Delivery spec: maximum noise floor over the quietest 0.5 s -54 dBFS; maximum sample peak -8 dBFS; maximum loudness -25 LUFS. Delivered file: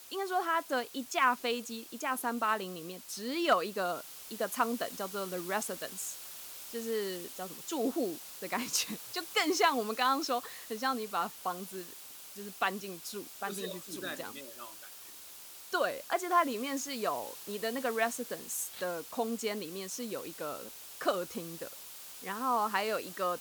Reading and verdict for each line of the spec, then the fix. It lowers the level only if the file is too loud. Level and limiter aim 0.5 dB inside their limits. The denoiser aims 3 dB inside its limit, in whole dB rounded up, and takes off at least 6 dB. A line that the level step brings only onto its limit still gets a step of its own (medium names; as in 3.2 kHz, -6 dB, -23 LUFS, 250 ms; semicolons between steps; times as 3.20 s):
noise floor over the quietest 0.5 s -50 dBFS: fail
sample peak -15.0 dBFS: pass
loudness -34.0 LUFS: pass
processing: noise reduction 7 dB, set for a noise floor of -50 dBFS